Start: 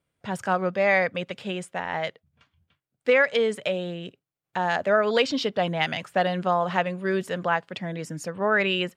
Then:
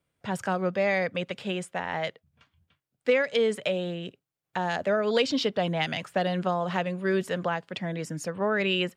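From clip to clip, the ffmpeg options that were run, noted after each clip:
-filter_complex "[0:a]acrossover=split=500|3000[a][b][c];[b]acompressor=threshold=-28dB:ratio=6[d];[a][d][c]amix=inputs=3:normalize=0"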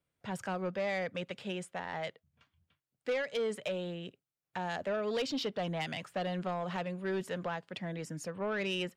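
-af "asoftclip=type=tanh:threshold=-20.5dB,volume=-6.5dB"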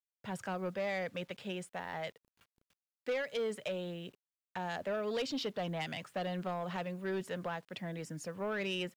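-af "acrusher=bits=10:mix=0:aa=0.000001,volume=-2dB"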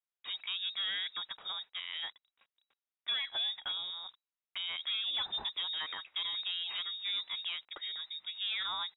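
-af "lowpass=f=3.3k:t=q:w=0.5098,lowpass=f=3.3k:t=q:w=0.6013,lowpass=f=3.3k:t=q:w=0.9,lowpass=f=3.3k:t=q:w=2.563,afreqshift=-3900"

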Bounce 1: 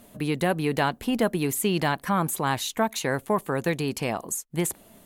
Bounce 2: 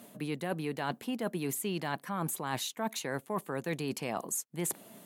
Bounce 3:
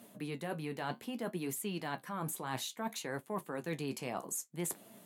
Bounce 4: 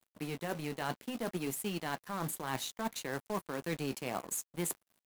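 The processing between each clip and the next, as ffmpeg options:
-af "highpass=f=130:w=0.5412,highpass=f=130:w=1.3066,areverse,acompressor=threshold=-31dB:ratio=6,areverse"
-af "flanger=delay=8.6:depth=7.6:regen=-53:speed=0.61:shape=triangular"
-af "aeval=exprs='sgn(val(0))*max(abs(val(0))-0.00335,0)':c=same,acrusher=bits=3:mode=log:mix=0:aa=0.000001,volume=3dB"

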